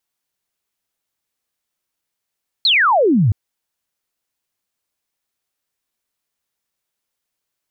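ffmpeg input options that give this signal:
-f lavfi -i "aevalsrc='0.299*clip(t/0.002,0,1)*clip((0.67-t)/0.002,0,1)*sin(2*PI*4400*0.67/log(92/4400)*(exp(log(92/4400)*t/0.67)-1))':d=0.67:s=44100"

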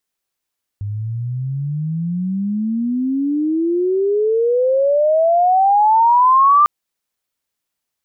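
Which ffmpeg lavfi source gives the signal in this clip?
-f lavfi -i "aevalsrc='pow(10,(-21+13.5*t/5.85)/20)*sin(2*PI*100*5.85/log(1200/100)*(exp(log(1200/100)*t/5.85)-1))':d=5.85:s=44100"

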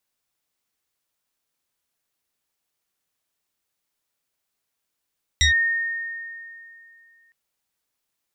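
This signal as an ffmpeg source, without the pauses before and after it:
-f lavfi -i "aevalsrc='0.224*pow(10,-3*t/2.6)*sin(2*PI*1840*t+2.4*clip(1-t/0.12,0,1)*sin(2*PI*1.04*1840*t))':d=1.91:s=44100"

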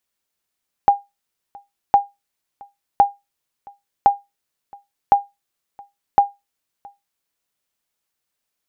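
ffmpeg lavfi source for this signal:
-f lavfi -i "aevalsrc='0.668*(sin(2*PI*806*mod(t,1.06))*exp(-6.91*mod(t,1.06)/0.2)+0.0422*sin(2*PI*806*max(mod(t,1.06)-0.67,0))*exp(-6.91*max(mod(t,1.06)-0.67,0)/0.2))':d=6.36:s=44100"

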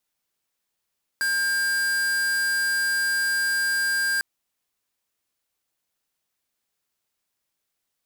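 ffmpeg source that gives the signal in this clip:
-f lavfi -i "aevalsrc='0.0668*(2*lt(mod(1600*t,1),0.5)-1)':d=3:s=44100"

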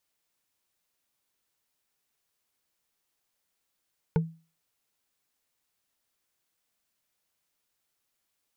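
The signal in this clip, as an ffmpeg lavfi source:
-f lavfi -i "aevalsrc='0.126*pow(10,-3*t/0.34)*sin(2*PI*163*t)+0.0708*pow(10,-3*t/0.101)*sin(2*PI*449.4*t)+0.0398*pow(10,-3*t/0.045)*sin(2*PI*880.9*t)+0.0224*pow(10,-3*t/0.025)*sin(2*PI*1456.1*t)+0.0126*pow(10,-3*t/0.015)*sin(2*PI*2174.4*t)':d=0.45:s=44100"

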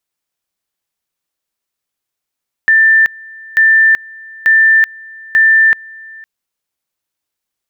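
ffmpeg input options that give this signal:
-f lavfi -i "aevalsrc='pow(10,(-5-25*gte(mod(t,0.89),0.38))/20)*sin(2*PI*1780*t)':d=3.56:s=44100"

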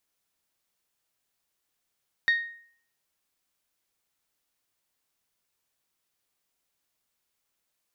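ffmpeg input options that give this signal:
-f lavfi -i "aevalsrc='0.141*pow(10,-3*t/0.56)*sin(2*PI*1860*t)+0.0376*pow(10,-3*t/0.345)*sin(2*PI*3720*t)+0.01*pow(10,-3*t/0.303)*sin(2*PI*4464*t)+0.00266*pow(10,-3*t/0.26)*sin(2*PI*5580*t)+0.000708*pow(10,-3*t/0.212)*sin(2*PI*7440*t)':d=0.89:s=44100"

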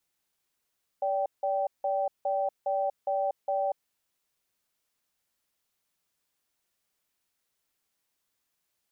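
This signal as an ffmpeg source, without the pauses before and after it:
-f lavfi -i "aevalsrc='0.0398*(sin(2*PI*576*t)+sin(2*PI*780*t))*clip(min(mod(t,0.41),0.24-mod(t,0.41))/0.005,0,1)':d=2.7:s=44100"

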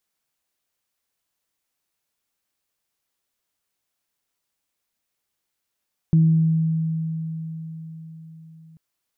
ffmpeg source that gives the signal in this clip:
-f lavfi -i "aevalsrc='0.266*pow(10,-3*t/4.71)*sin(2*PI*161*t)+0.0316*pow(10,-3*t/1.07)*sin(2*PI*322*t)':d=2.64:s=44100"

